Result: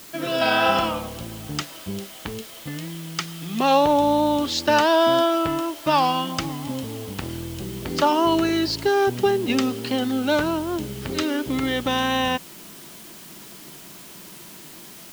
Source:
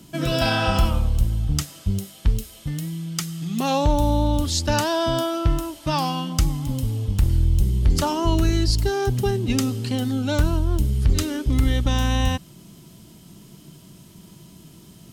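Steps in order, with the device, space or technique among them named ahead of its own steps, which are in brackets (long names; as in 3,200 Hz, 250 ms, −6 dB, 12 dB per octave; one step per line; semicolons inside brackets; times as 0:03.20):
dictaphone (band-pass filter 320–3,600 Hz; automatic gain control gain up to 6 dB; tape wow and flutter 21 cents; white noise bed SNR 20 dB)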